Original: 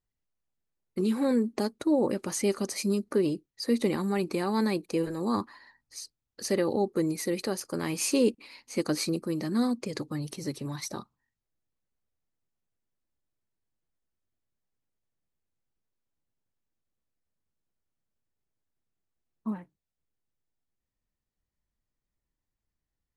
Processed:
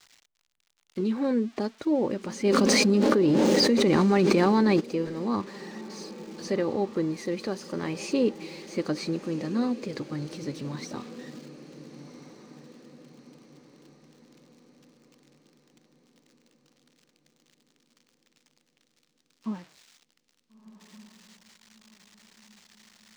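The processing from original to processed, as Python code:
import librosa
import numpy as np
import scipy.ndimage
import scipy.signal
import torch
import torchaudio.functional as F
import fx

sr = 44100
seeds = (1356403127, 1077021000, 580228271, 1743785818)

y = x + 0.5 * 10.0 ** (-30.5 / 20.0) * np.diff(np.sign(x), prepend=np.sign(x[:1]))
y = fx.air_absorb(y, sr, metres=150.0)
y = fx.echo_diffused(y, sr, ms=1404, feedback_pct=47, wet_db=-13.5)
y = fx.env_flatten(y, sr, amount_pct=100, at=(2.44, 4.79), fade=0.02)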